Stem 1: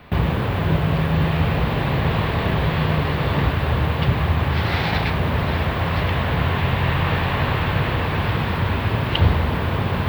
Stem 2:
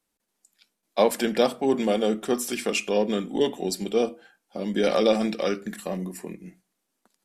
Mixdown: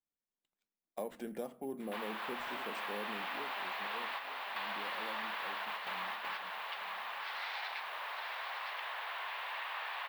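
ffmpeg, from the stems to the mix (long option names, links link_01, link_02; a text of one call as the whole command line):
ffmpeg -i stem1.wav -i stem2.wav -filter_complex "[0:a]highpass=frequency=780:width=0.5412,highpass=frequency=780:width=1.3066,adelay=1800,volume=-2.5dB,asplit=2[link_01][link_02];[link_02]volume=-5dB[link_03];[1:a]equalizer=frequency=4400:width_type=o:width=2.3:gain=-12.5,acrusher=samples=4:mix=1:aa=0.000001,volume=-9.5dB,afade=type=out:start_time=3.05:duration=0.43:silence=0.375837,asplit=3[link_04][link_05][link_06];[link_05]volume=-17.5dB[link_07];[link_06]apad=whole_len=524231[link_08];[link_01][link_08]sidechaingate=range=-33dB:threshold=-55dB:ratio=16:detection=peak[link_09];[link_03][link_07]amix=inputs=2:normalize=0,aecho=0:1:900|1800|2700|3600:1|0.31|0.0961|0.0298[link_10];[link_09][link_04][link_10]amix=inputs=3:normalize=0,agate=range=-11dB:threshold=-52dB:ratio=16:detection=peak,acompressor=threshold=-42dB:ratio=2.5" out.wav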